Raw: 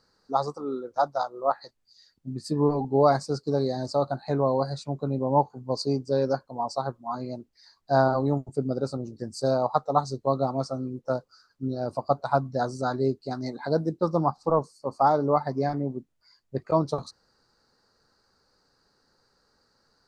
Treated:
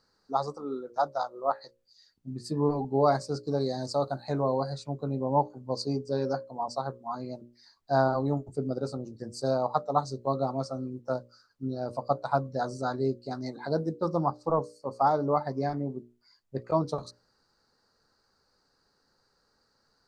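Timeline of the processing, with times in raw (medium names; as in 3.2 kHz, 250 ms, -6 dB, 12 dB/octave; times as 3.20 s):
3.60–4.42 s: treble shelf 5.3 kHz +8 dB
whole clip: hum notches 60/120/180/240/300/360/420/480/540/600 Hz; trim -3 dB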